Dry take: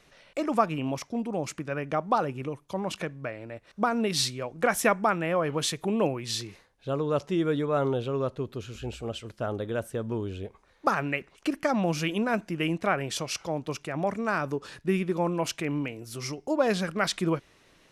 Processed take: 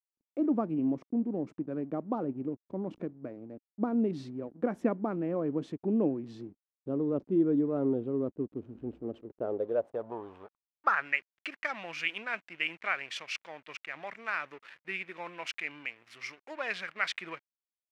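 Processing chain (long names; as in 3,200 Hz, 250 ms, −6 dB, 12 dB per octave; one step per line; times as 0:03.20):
slack as between gear wheels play −37.5 dBFS
band-pass filter sweep 280 Hz → 2,200 Hz, 0:09.02–0:11.26
level +4 dB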